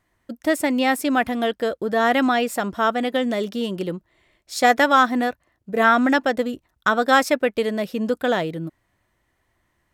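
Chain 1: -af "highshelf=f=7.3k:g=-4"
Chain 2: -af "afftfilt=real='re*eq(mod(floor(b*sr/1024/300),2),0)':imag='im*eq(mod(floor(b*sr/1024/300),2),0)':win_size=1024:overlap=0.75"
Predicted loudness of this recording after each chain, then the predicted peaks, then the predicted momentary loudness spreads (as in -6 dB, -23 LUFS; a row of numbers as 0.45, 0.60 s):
-21.0, -23.0 LUFS; -3.5, -5.5 dBFS; 12, 14 LU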